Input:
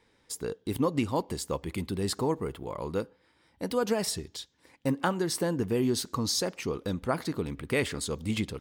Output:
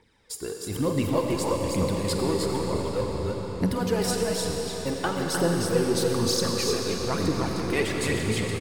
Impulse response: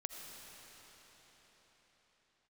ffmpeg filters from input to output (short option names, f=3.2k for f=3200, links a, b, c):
-filter_complex "[0:a]aecho=1:1:48|305|328:0.2|0.562|0.398,asplit=3[a][b][c];[a]afade=t=out:st=2.99:d=0.02[d];[b]asubboost=boost=9:cutoff=140,afade=t=in:st=2.99:d=0.02,afade=t=out:st=3.74:d=0.02[e];[c]afade=t=in:st=3.74:d=0.02[f];[d][e][f]amix=inputs=3:normalize=0,asplit=2[g][h];[h]asoftclip=type=hard:threshold=-27.5dB,volume=-7dB[i];[g][i]amix=inputs=2:normalize=0,aphaser=in_gain=1:out_gain=1:delay=3:decay=0.59:speed=1.1:type=triangular[j];[1:a]atrim=start_sample=2205,asetrate=39690,aresample=44100[k];[j][k]afir=irnorm=-1:irlink=0"